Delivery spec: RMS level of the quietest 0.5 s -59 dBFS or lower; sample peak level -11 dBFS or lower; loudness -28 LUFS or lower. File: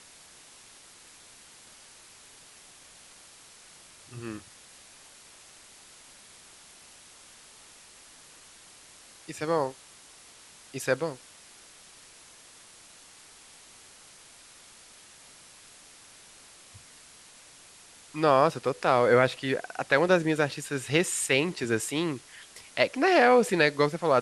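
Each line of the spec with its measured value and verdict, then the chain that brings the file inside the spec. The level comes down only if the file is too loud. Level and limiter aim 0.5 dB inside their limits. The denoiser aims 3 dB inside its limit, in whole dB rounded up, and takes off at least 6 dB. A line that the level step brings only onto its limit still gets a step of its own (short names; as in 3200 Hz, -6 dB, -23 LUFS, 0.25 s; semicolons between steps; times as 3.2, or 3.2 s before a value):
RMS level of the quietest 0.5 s -53 dBFS: fail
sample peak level -7.0 dBFS: fail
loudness -25.5 LUFS: fail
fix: denoiser 6 dB, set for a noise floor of -53 dBFS; gain -3 dB; limiter -11.5 dBFS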